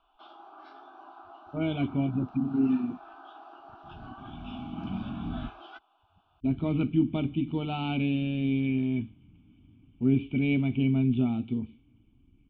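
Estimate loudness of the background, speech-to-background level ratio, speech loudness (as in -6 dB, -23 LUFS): -48.5 LUFS, 19.5 dB, -29.0 LUFS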